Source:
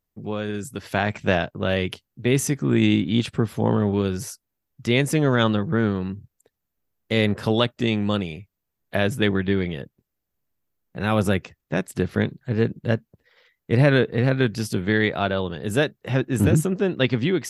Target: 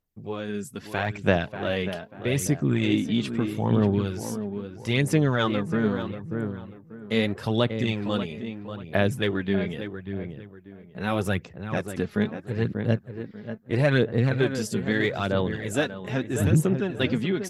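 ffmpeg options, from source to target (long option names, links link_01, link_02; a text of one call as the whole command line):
ffmpeg -i in.wav -filter_complex "[0:a]asplit=2[link_01][link_02];[link_02]adelay=589,lowpass=frequency=2100:poles=1,volume=-8.5dB,asplit=2[link_03][link_04];[link_04]adelay=589,lowpass=frequency=2100:poles=1,volume=0.34,asplit=2[link_05][link_06];[link_06]adelay=589,lowpass=frequency=2100:poles=1,volume=0.34,asplit=2[link_07][link_08];[link_08]adelay=589,lowpass=frequency=2100:poles=1,volume=0.34[link_09];[link_01][link_03][link_05][link_07][link_09]amix=inputs=5:normalize=0,aphaser=in_gain=1:out_gain=1:delay=4.9:decay=0.45:speed=0.78:type=sinusoidal,asettb=1/sr,asplit=3[link_10][link_11][link_12];[link_10]atrim=end=13.754[link_13];[link_11]atrim=start=13.75:end=16.42,asetpts=PTS-STARTPTS,afade=type=in:duration=0.004:curve=qsin,afade=type=out:start_time=2.666:duration=0.004:curve=qsin,equalizer=frequency=7200:width=3.1:gain=8[link_14];[link_12]atrim=start=16.416[link_15];[link_13][link_14]acrossfade=duration=0.004:curve1=hsin:curve2=qsin[link_16];[link_16][link_15]acrossfade=duration=0.004:curve1=qsin:curve2=hsin,volume=-5dB" out.wav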